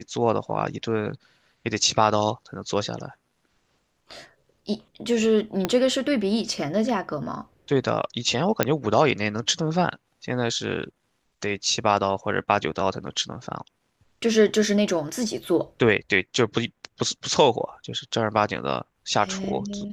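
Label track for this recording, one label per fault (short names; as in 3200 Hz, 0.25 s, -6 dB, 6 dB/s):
5.650000	5.650000	pop -8 dBFS
8.630000	8.630000	pop -5 dBFS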